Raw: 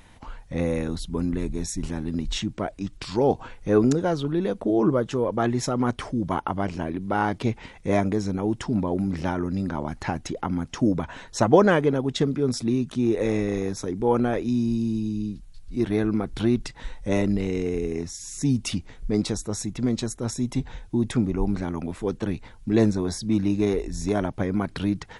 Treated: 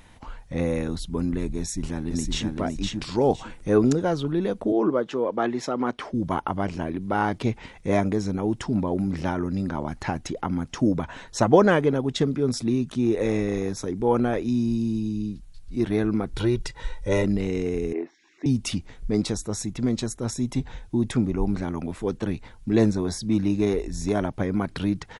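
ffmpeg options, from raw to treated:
-filter_complex "[0:a]asplit=2[s0][s1];[s1]afade=t=in:st=1.59:d=0.01,afade=t=out:st=2.58:d=0.01,aecho=0:1:510|1020|1530:0.707946|0.141589|0.0283178[s2];[s0][s2]amix=inputs=2:normalize=0,asettb=1/sr,asplit=3[s3][s4][s5];[s3]atrim=end=3.254[s6];[s4]atrim=start=3.25:end=3.77,asetpts=PTS-STARTPTS,afade=t=in:d=0.004:c=qsin,afade=t=out:st=0.516:d=0.004:c=qsin,equalizer=f=8700:t=o:w=0.48:g=8.5[s7];[s5]atrim=start=3.766[s8];[s6][s7]acrossfade=d=0.004:c1=hsin:c2=qsin[s9];[s9][s8]acrossfade=d=0.004:c1=qsin:c2=hsin,asettb=1/sr,asplit=3[s10][s11][s12];[s10]atrim=end=4.724[s13];[s11]atrim=start=4.72:end=6.14,asetpts=PTS-STARTPTS,afade=t=in:d=0.004:c=qsin,afade=t=out:st=1.416:d=0.004:c=qsin,acrossover=split=200 5100:gain=0.1 1 0.251[s14][s15][s16];[s14][s15][s16]amix=inputs=3:normalize=0[s17];[s12]atrim=start=6.136[s18];[s13][s17]acrossfade=d=0.004:c1=hsin:c2=qsin[s19];[s19][s18]acrossfade=d=0.004:c1=qsin:c2=hsin,asettb=1/sr,asplit=3[s20][s21][s22];[s20]atrim=end=16.344[s23];[s21]atrim=start=16.34:end=17.24,asetpts=PTS-STARTPTS,afade=t=in:d=0.004:c=qsin,afade=t=out:st=0.896:d=0.004:c=qsin,aecho=1:1:2.1:0.65,atrim=end_sample=39690[s24];[s22]atrim=start=17.236[s25];[s23][s24]acrossfade=d=0.004:c1=hsin:c2=qsin[s26];[s26][s25]acrossfade=d=0.004:c1=qsin:c2=hsin,asettb=1/sr,asplit=3[s27][s28][s29];[s27]atrim=end=17.934[s30];[s28]atrim=start=17.93:end=18.46,asetpts=PTS-STARTPTS,afade=t=in:d=0.004:c=qsin,afade=t=out:st=0.526:d=0.004:c=qsin,highpass=f=300:w=0.5412,highpass=f=300:w=1.3066,equalizer=f=330:t=q:w=4:g=6,equalizer=f=670:t=q:w=4:g=4,equalizer=f=1300:t=q:w=4:g=-4,lowpass=f=2600:w=0.5412,lowpass=f=2600:w=1.3066[s31];[s29]atrim=start=18.456[s32];[s30][s31]acrossfade=d=0.004:c1=hsin:c2=qsin[s33];[s33][s32]acrossfade=d=0.004:c1=qsin:c2=hsin"

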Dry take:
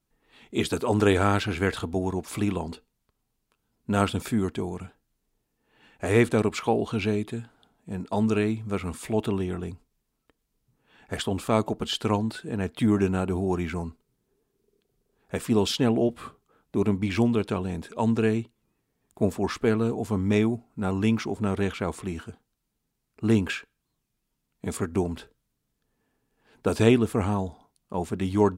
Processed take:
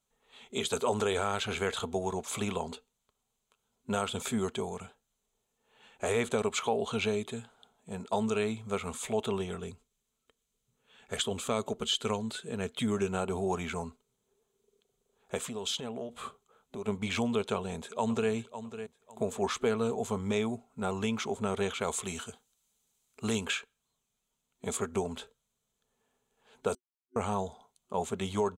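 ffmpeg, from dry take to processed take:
-filter_complex "[0:a]asettb=1/sr,asplit=3[s0][s1][s2];[s0]atrim=end=9.514[s3];[s1]atrim=start=9.51:end=13.12,asetpts=PTS-STARTPTS,afade=t=in:d=0.004:c=qsin,afade=t=out:st=3.606:d=0.004:c=qsin,equalizer=f=820:w=1.5:g=-6.5[s4];[s2]atrim=start=13.116[s5];[s3][s4]acrossfade=d=0.004:c1=hsin:c2=qsin[s6];[s6][s5]acrossfade=d=0.004:c1=qsin:c2=hsin,asplit=3[s7][s8][s9];[s7]afade=t=out:st=15.47:d=0.02[s10];[s8]acompressor=threshold=0.0316:ratio=8:attack=3.2:release=140:knee=1:detection=peak,afade=t=in:st=15.47:d=0.02,afade=t=out:st=16.87:d=0.02[s11];[s9]afade=t=in:st=16.87:d=0.02[s12];[s10][s11][s12]amix=inputs=3:normalize=0,asplit=2[s13][s14];[s14]afade=t=in:st=17.54:d=0.01,afade=t=out:st=18.31:d=0.01,aecho=0:1:550|1100|1650:0.199526|0.0498816|0.0124704[s15];[s13][s15]amix=inputs=2:normalize=0,asettb=1/sr,asplit=3[s16][s17][s18];[s16]atrim=end=21.814[s19];[s17]atrim=start=21.81:end=23.45,asetpts=PTS-STARTPTS,afade=t=in:d=0.004:c=qsin,afade=t=out:st=1.636:d=0.004:c=qsin,highshelf=f=2900:g=9.5[s20];[s18]atrim=start=23.446[s21];[s19][s20]acrossfade=d=0.004:c1=hsin:c2=qsin[s22];[s22][s21]acrossfade=d=0.004:c1=qsin:c2=hsin,asplit=3[s23][s24][s25];[s23]atrim=end=26.75,asetpts=PTS-STARTPTS,afade=t=out:st=26.746:d=0.004:c=hsin[s26];[s24]atrim=start=26.75:end=27.16,asetpts=PTS-STARTPTS,volume=0[s27];[s25]atrim=start=27.16,asetpts=PTS-STARTPTS,afade=t=in:d=0.004:c=hsin[s28];[s26][s27][s28]concat=n=3:v=0:a=1,superequalizer=6b=0.251:11b=0.631:13b=1.78:15b=3.16:16b=1.58,alimiter=limit=0.158:level=0:latency=1:release=168,bass=f=250:g=-10,treble=f=4000:g=-5"

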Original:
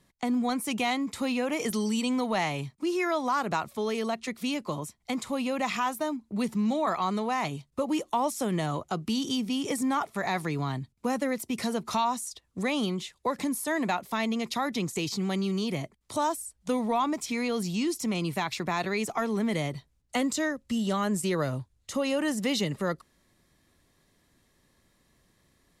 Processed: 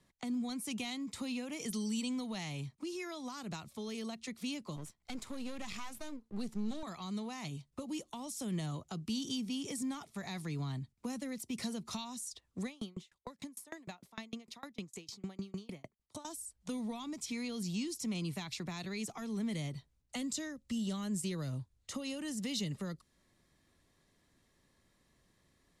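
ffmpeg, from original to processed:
-filter_complex "[0:a]asettb=1/sr,asplit=3[s0][s1][s2];[s0]atrim=end=4.764[s3];[s1]atrim=start=4.76:end=6.83,asetpts=PTS-STARTPTS,afade=t=in:d=0.004:c=qsin,afade=t=out:st=2.066:d=0.004:c=qsin,aeval=exprs='if(lt(val(0),0),0.251*val(0),val(0))':c=same[s4];[s2]atrim=start=6.826[s5];[s3][s4]acrossfade=d=0.004:c1=hsin:c2=qsin[s6];[s6][s5]acrossfade=d=0.004:c1=qsin:c2=hsin,asettb=1/sr,asplit=3[s7][s8][s9];[s7]atrim=end=12.664[s10];[s8]atrim=start=12.66:end=16.25,asetpts=PTS-STARTPTS,afade=t=in:d=0.004:c=qsin,afade=t=out:st=3.586:d=0.004:c=qsin,aeval=exprs='val(0)*pow(10,-32*if(lt(mod(6.6*n/s,1),2*abs(6.6)/1000),1-mod(6.6*n/s,1)/(2*abs(6.6)/1000),(mod(6.6*n/s,1)-2*abs(6.6)/1000)/(1-2*abs(6.6)/1000))/20)':c=same[s11];[s9]atrim=start=16.246[s12];[s10][s11]acrossfade=d=0.004:c1=hsin:c2=qsin[s13];[s13][s12]acrossfade=d=0.004:c1=qsin:c2=hsin,lowpass=11000,acrossover=split=250|3000[s14][s15][s16];[s15]acompressor=threshold=0.00891:ratio=10[s17];[s14][s17][s16]amix=inputs=3:normalize=0,volume=0.562"

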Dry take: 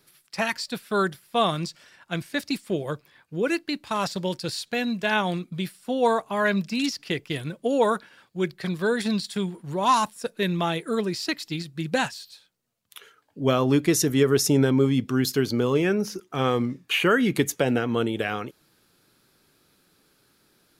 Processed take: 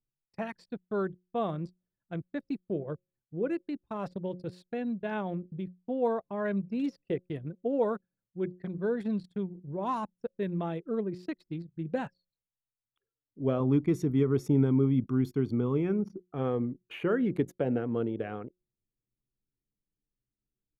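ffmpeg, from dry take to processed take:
-filter_complex "[0:a]asettb=1/sr,asplit=3[s0][s1][s2];[s0]atrim=end=6.624[s3];[s1]atrim=start=6.62:end=7.16,asetpts=PTS-STARTPTS,afade=t=in:d=0.004:c=qsin,afade=t=out:st=0.536:d=0.004:c=qsin,equalizer=f=520:t=o:w=0.77:g=8[s4];[s2]atrim=start=7.156[s5];[s3][s4]acrossfade=d=0.004:c1=hsin:c2=qsin[s6];[s6][s5]acrossfade=d=0.004:c1=qsin:c2=hsin,asettb=1/sr,asplit=3[s7][s8][s9];[s7]atrim=end=13.604[s10];[s8]atrim=start=13.6:end=16.17,asetpts=PTS-STARTPTS,afade=t=in:d=0.004:c=qsin,afade=t=out:st=2.566:d=0.004:c=qsin,aecho=1:1:0.9:0.54,atrim=end_sample=113337[s11];[s9]atrim=start=16.166[s12];[s10][s11]acrossfade=d=0.004:c1=hsin:c2=qsin[s13];[s13][s12]acrossfade=d=0.004:c1=qsin:c2=hsin,bandreject=f=180.5:t=h:w=4,bandreject=f=361:t=h:w=4,bandreject=f=541.5:t=h:w=4,anlmdn=10,firequalizer=gain_entry='entry(480,0);entry(930,-7);entry(4700,-23)':delay=0.05:min_phase=1,volume=0.531"

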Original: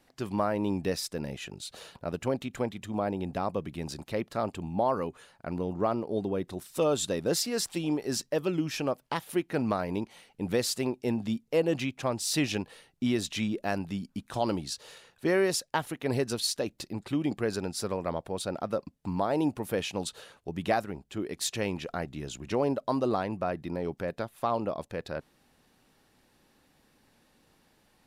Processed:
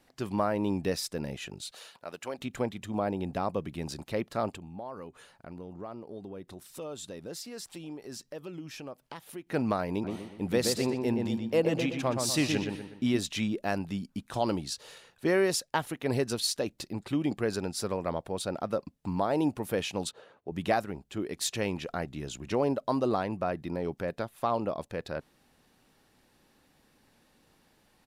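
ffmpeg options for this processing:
-filter_complex "[0:a]asplit=3[s0][s1][s2];[s0]afade=t=out:st=1.7:d=0.02[s3];[s1]highpass=f=1100:p=1,afade=t=in:st=1.7:d=0.02,afade=t=out:st=2.38:d=0.02[s4];[s2]afade=t=in:st=2.38:d=0.02[s5];[s3][s4][s5]amix=inputs=3:normalize=0,asettb=1/sr,asplit=3[s6][s7][s8];[s6]atrim=end=4.564[s9];[s7]atrim=start=4.56:end=9.47,asetpts=PTS-STARTPTS,afade=t=in:d=0.004:c=qsin,afade=t=out:st=4.906:d=0.004:c=qsin,acompressor=threshold=0.00398:ratio=2:attack=3.2:release=140:knee=1:detection=peak[s10];[s8]atrim=start=9.466[s11];[s9][s10]acrossfade=d=0.004:c1=hsin:c2=qsin[s12];[s12][s11]acrossfade=d=0.004:c1=qsin:c2=hsin,asplit=3[s13][s14][s15];[s13]afade=t=out:st=10.03:d=0.02[s16];[s14]asplit=2[s17][s18];[s18]adelay=122,lowpass=f=2700:p=1,volume=0.631,asplit=2[s19][s20];[s20]adelay=122,lowpass=f=2700:p=1,volume=0.43,asplit=2[s21][s22];[s22]adelay=122,lowpass=f=2700:p=1,volume=0.43,asplit=2[s23][s24];[s24]adelay=122,lowpass=f=2700:p=1,volume=0.43,asplit=2[s25][s26];[s26]adelay=122,lowpass=f=2700:p=1,volume=0.43[s27];[s17][s19][s21][s23][s25][s27]amix=inputs=6:normalize=0,afade=t=in:st=10.03:d=0.02,afade=t=out:st=13.17:d=0.02[s28];[s15]afade=t=in:st=13.17:d=0.02[s29];[s16][s28][s29]amix=inputs=3:normalize=0,asettb=1/sr,asplit=3[s30][s31][s32];[s30]atrim=end=20.114[s33];[s31]atrim=start=20.11:end=20.52,asetpts=PTS-STARTPTS,afade=t=in:d=0.004:c=qsin,afade=t=out:st=0.406:d=0.004:c=qsin,bandpass=f=470:t=q:w=0.53[s34];[s32]atrim=start=20.516[s35];[s33][s34]acrossfade=d=0.004:c1=hsin:c2=qsin[s36];[s36][s35]acrossfade=d=0.004:c1=qsin:c2=hsin"

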